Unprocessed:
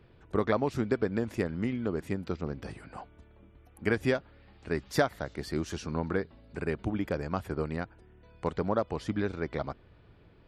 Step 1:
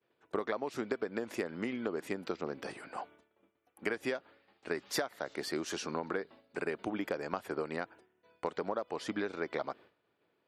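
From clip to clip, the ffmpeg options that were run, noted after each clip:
-af "highpass=350,acompressor=threshold=-34dB:ratio=10,agate=range=-33dB:threshold=-54dB:ratio=3:detection=peak,volume=3.5dB"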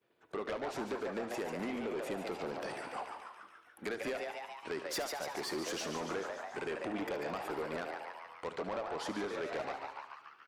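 -filter_complex "[0:a]asplit=2[a][b];[b]asplit=8[c][d][e][f][g][h][i][j];[c]adelay=143,afreqshift=140,volume=-8dB[k];[d]adelay=286,afreqshift=280,volume=-12.3dB[l];[e]adelay=429,afreqshift=420,volume=-16.6dB[m];[f]adelay=572,afreqshift=560,volume=-20.9dB[n];[g]adelay=715,afreqshift=700,volume=-25.2dB[o];[h]adelay=858,afreqshift=840,volume=-29.5dB[p];[i]adelay=1001,afreqshift=980,volume=-33.8dB[q];[j]adelay=1144,afreqshift=1120,volume=-38.1dB[r];[k][l][m][n][o][p][q][r]amix=inputs=8:normalize=0[s];[a][s]amix=inputs=2:normalize=0,asoftclip=type=tanh:threshold=-34dB,asplit=2[t][u];[u]aecho=0:1:73|146|219|292|365|438:0.224|0.13|0.0753|0.0437|0.0253|0.0147[v];[t][v]amix=inputs=2:normalize=0,volume=1.5dB"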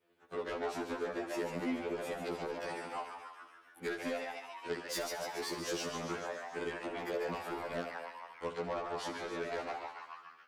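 -af "afftfilt=real='re*2*eq(mod(b,4),0)':imag='im*2*eq(mod(b,4),0)':win_size=2048:overlap=0.75,volume=2.5dB"

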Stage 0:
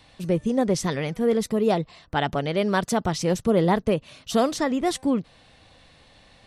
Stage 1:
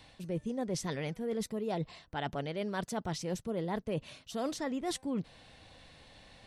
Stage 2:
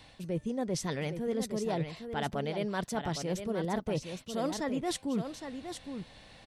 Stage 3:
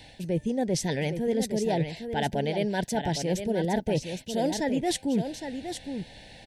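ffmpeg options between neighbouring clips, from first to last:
-af "bandreject=f=1.2k:w=14,areverse,acompressor=threshold=-30dB:ratio=6,areverse,volume=-2.5dB"
-af "aecho=1:1:813:0.398,volume=2dB"
-af "asuperstop=centerf=1200:order=8:qfactor=2.1,volume=6dB"

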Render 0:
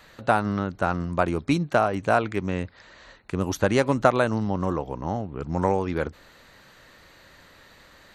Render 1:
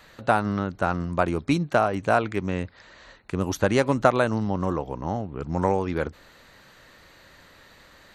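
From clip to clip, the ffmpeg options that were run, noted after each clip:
-af anull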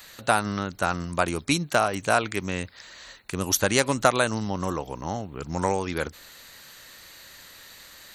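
-af "crystalizer=i=6.5:c=0,volume=-3.5dB"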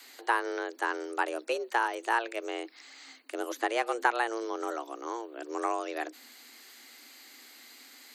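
-filter_complex "[0:a]afreqshift=230,asubboost=boost=3:cutoff=230,acrossover=split=2700[a][b];[b]acompressor=threshold=-40dB:ratio=4:attack=1:release=60[c];[a][c]amix=inputs=2:normalize=0,volume=-5dB"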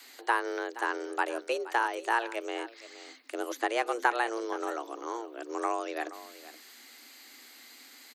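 -af "aecho=1:1:473:0.158"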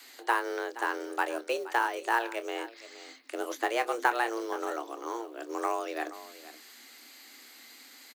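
-filter_complex "[0:a]acrusher=bits=6:mode=log:mix=0:aa=0.000001,asplit=2[a][b];[b]adelay=26,volume=-12dB[c];[a][c]amix=inputs=2:normalize=0"

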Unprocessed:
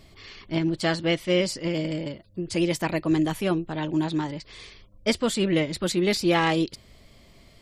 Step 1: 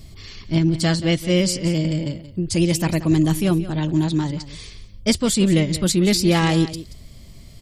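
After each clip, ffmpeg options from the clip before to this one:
-af "bass=f=250:g=13,treble=f=4k:g=11,aecho=1:1:179:0.188"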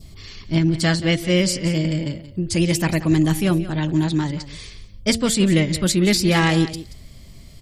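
-af "bandreject=f=113.9:t=h:w=4,bandreject=f=227.8:t=h:w=4,bandreject=f=341.7:t=h:w=4,bandreject=f=455.6:t=h:w=4,bandreject=f=569.5:t=h:w=4,bandreject=f=683.4:t=h:w=4,bandreject=f=797.3:t=h:w=4,adynamicequalizer=threshold=0.00794:dfrequency=1800:dqfactor=1.4:tfrequency=1800:tqfactor=1.4:attack=5:release=100:ratio=0.375:range=2.5:mode=boostabove:tftype=bell"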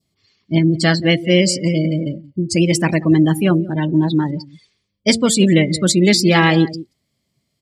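-af "highpass=160,afftdn=nr=27:nf=-28,volume=5.5dB"

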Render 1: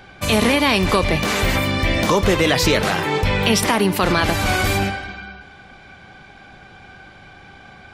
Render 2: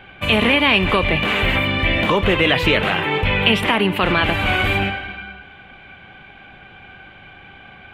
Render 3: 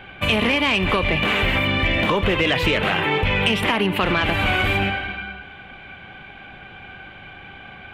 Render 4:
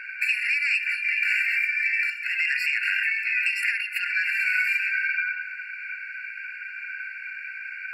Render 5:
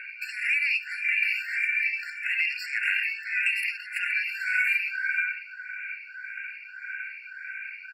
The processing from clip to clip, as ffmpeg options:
-af "highshelf=f=4k:t=q:w=3:g=-11.5,volume=-1dB"
-af "asoftclip=type=tanh:threshold=-5dB,acompressor=threshold=-19dB:ratio=3,volume=2dB"
-af "acompressor=threshold=-25dB:ratio=4,afftfilt=real='re*eq(mod(floor(b*sr/1024/1400),2),1)':imag='im*eq(mod(floor(b*sr/1024/1400),2),1)':win_size=1024:overlap=0.75,volume=7dB"
-filter_complex "[0:a]aecho=1:1:476:0.158,asplit=2[a][b];[b]afreqshift=1.7[c];[a][c]amix=inputs=2:normalize=1"

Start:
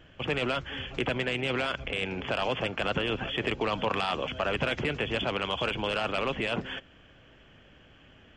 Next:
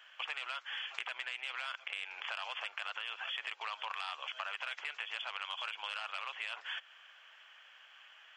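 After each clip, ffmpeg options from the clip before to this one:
-af "highpass=f=940:w=0.5412,highpass=f=940:w=1.3066,acompressor=threshold=-39dB:ratio=6,volume=2dB"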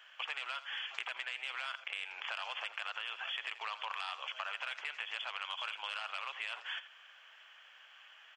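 -af "aecho=1:1:85:0.188"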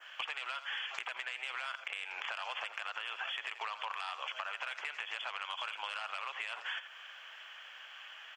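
-af "adynamicequalizer=threshold=0.00251:dfrequency=3500:dqfactor=1.2:tfrequency=3500:tqfactor=1.2:attack=5:release=100:ratio=0.375:range=2:mode=cutabove:tftype=bell,acompressor=threshold=-43dB:ratio=5,asoftclip=type=tanh:threshold=-29dB,volume=7.5dB"

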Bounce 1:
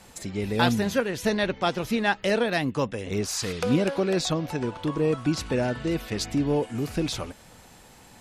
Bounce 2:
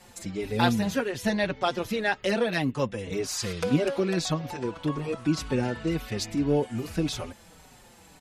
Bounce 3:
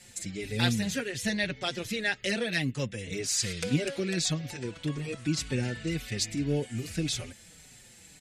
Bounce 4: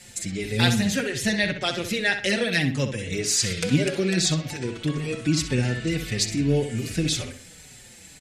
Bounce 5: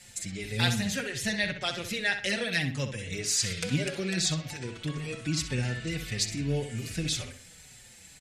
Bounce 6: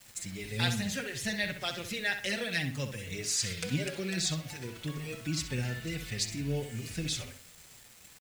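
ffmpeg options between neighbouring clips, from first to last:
-filter_complex "[0:a]asplit=2[a][b];[b]adelay=5.1,afreqshift=-1.8[c];[a][c]amix=inputs=2:normalize=1,volume=1dB"
-af "equalizer=f=125:t=o:w=1:g=6,equalizer=f=1k:t=o:w=1:g=-11,equalizer=f=2k:t=o:w=1:g=8,equalizer=f=4k:t=o:w=1:g=4,equalizer=f=8k:t=o:w=1:g=11,volume=-5.5dB"
-filter_complex "[0:a]asplit=2[a][b];[b]adelay=64,lowpass=f=4.1k:p=1,volume=-8dB,asplit=2[c][d];[d]adelay=64,lowpass=f=4.1k:p=1,volume=0.38,asplit=2[e][f];[f]adelay=64,lowpass=f=4.1k:p=1,volume=0.38,asplit=2[g][h];[h]adelay=64,lowpass=f=4.1k:p=1,volume=0.38[i];[a][c][e][g][i]amix=inputs=5:normalize=0,volume=6dB"
-af "equalizer=f=320:t=o:w=1.5:g=-6,volume=-4.5dB"
-af "acrusher=bits=7:mix=0:aa=0.000001,volume=-3.5dB"

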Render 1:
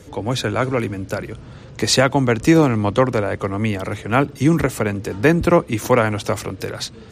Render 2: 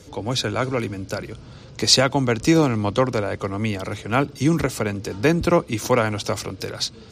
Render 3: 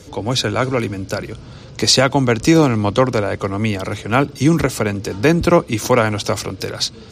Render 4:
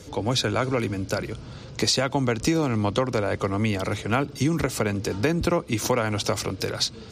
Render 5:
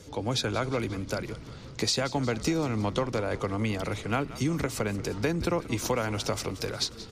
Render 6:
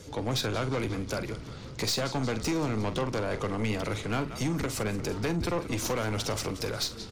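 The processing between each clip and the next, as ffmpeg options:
-af "equalizer=f=4.9k:t=o:w=0.95:g=8,bandreject=f=1.8k:w=12,volume=-3.5dB"
-af "alimiter=level_in=6dB:limit=-1dB:release=50:level=0:latency=1,volume=-1dB"
-af "acompressor=threshold=-16dB:ratio=6,volume=-3dB"
-filter_complex "[0:a]asplit=8[a][b][c][d][e][f][g][h];[b]adelay=179,afreqshift=-59,volume=-16dB[i];[c]adelay=358,afreqshift=-118,volume=-19.9dB[j];[d]adelay=537,afreqshift=-177,volume=-23.8dB[k];[e]adelay=716,afreqshift=-236,volume=-27.6dB[l];[f]adelay=895,afreqshift=-295,volume=-31.5dB[m];[g]adelay=1074,afreqshift=-354,volume=-35.4dB[n];[h]adelay=1253,afreqshift=-413,volume=-39.3dB[o];[a][i][j][k][l][m][n][o]amix=inputs=8:normalize=0,volume=-5dB"
-filter_complex "[0:a]aeval=exprs='(tanh(22.4*val(0)+0.3)-tanh(0.3))/22.4':c=same,asplit=2[a][b];[b]adelay=46,volume=-12.5dB[c];[a][c]amix=inputs=2:normalize=0,volume=2.5dB"

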